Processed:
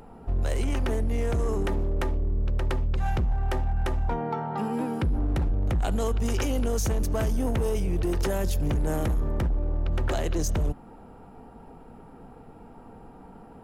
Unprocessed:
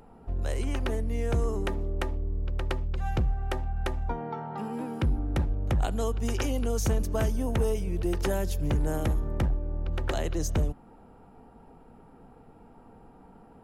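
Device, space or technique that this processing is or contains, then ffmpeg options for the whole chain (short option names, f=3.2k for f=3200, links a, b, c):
limiter into clipper: -af "alimiter=limit=-23.5dB:level=0:latency=1:release=11,asoftclip=type=hard:threshold=-26dB,volume=5.5dB"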